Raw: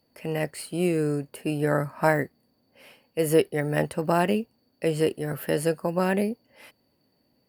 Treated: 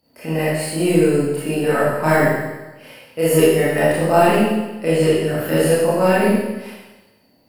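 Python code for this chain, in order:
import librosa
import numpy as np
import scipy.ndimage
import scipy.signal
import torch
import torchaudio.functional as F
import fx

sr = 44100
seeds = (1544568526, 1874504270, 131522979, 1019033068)

p1 = fx.high_shelf(x, sr, hz=8300.0, db=-5.5, at=(4.98, 5.56))
p2 = 10.0 ** (-18.0 / 20.0) * np.tanh(p1 / 10.0 ** (-18.0 / 20.0))
p3 = p1 + F.gain(torch.from_numpy(p2), -7.0).numpy()
p4 = fx.rev_schroeder(p3, sr, rt60_s=1.1, comb_ms=25, drr_db=-9.5)
y = F.gain(torch.from_numpy(p4), -2.5).numpy()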